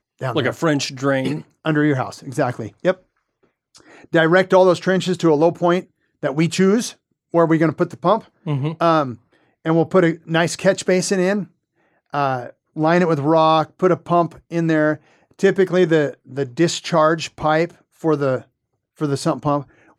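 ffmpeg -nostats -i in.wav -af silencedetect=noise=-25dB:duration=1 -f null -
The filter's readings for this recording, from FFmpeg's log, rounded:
silence_start: 2.93
silence_end: 4.14 | silence_duration: 1.21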